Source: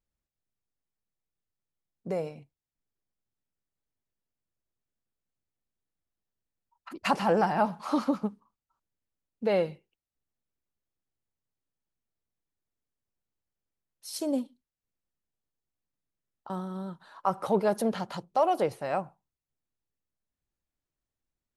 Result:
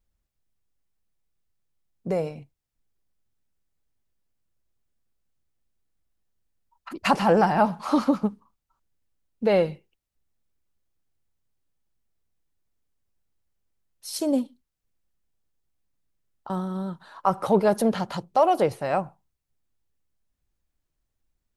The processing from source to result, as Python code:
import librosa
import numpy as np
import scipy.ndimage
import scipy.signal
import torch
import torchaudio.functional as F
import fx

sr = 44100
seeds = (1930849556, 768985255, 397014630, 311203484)

y = fx.low_shelf(x, sr, hz=82.0, db=10.0)
y = F.gain(torch.from_numpy(y), 5.0).numpy()